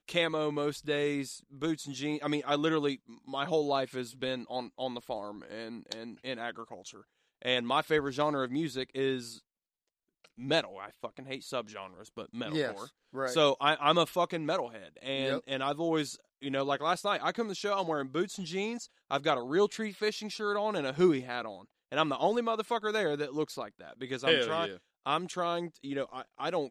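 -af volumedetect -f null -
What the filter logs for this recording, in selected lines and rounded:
mean_volume: -32.8 dB
max_volume: -10.7 dB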